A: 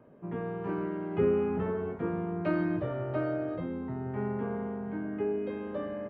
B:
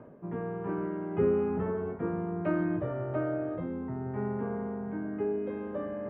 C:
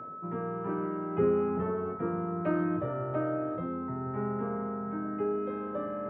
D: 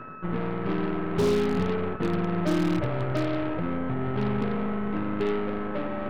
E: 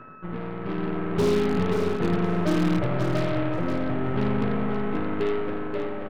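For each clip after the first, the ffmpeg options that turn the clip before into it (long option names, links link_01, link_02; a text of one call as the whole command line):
ffmpeg -i in.wav -af "lowpass=2000,areverse,acompressor=mode=upward:threshold=-34dB:ratio=2.5,areverse" out.wav
ffmpeg -i in.wav -af "aeval=exprs='val(0)+0.01*sin(2*PI*1300*n/s)':channel_layout=same,highpass=87" out.wav
ffmpeg -i in.wav -af "lowshelf=frequency=360:gain=11,aeval=exprs='0.141*(cos(1*acos(clip(val(0)/0.141,-1,1)))-cos(1*PI/2))+0.0224*(cos(8*acos(clip(val(0)/0.141,-1,1)))-cos(8*PI/2))':channel_layout=same,volume=-1.5dB" out.wav
ffmpeg -i in.wav -filter_complex "[0:a]dynaudnorm=framelen=270:gausssize=7:maxgain=5.5dB,asplit=2[link_01][link_02];[link_02]aecho=0:1:531|1062|1593:0.447|0.103|0.0236[link_03];[link_01][link_03]amix=inputs=2:normalize=0,volume=-4dB" out.wav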